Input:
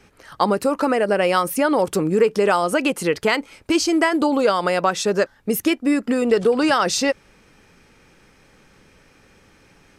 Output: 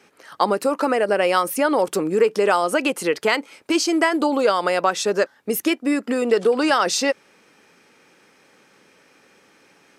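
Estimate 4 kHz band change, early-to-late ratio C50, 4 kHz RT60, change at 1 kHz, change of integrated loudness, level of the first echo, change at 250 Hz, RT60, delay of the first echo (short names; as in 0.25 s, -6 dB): 0.0 dB, none, none, 0.0 dB, -0.5 dB, none, -2.5 dB, none, none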